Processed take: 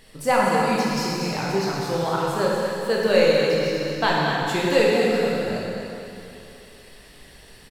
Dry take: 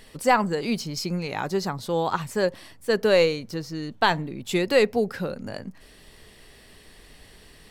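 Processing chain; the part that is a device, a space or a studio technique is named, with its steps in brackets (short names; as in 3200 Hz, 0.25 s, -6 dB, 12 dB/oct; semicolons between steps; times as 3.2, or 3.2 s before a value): cave (echo 0.239 s -8.5 dB; reverb RT60 2.9 s, pre-delay 11 ms, DRR -4.5 dB); gain -3 dB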